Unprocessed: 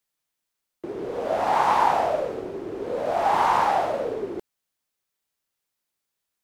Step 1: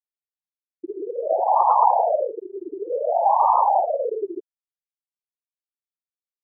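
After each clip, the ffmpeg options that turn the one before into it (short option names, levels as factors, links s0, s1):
-af "lowpass=1500,afftfilt=real='re*gte(hypot(re,im),0.2)':imag='im*gte(hypot(re,im),0.2)':win_size=1024:overlap=0.75,volume=1.68"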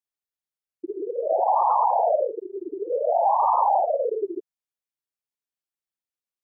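-af "alimiter=limit=0.237:level=0:latency=1:release=28"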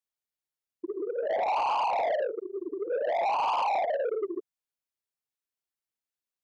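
-af "asoftclip=type=tanh:threshold=0.075,volume=0.841"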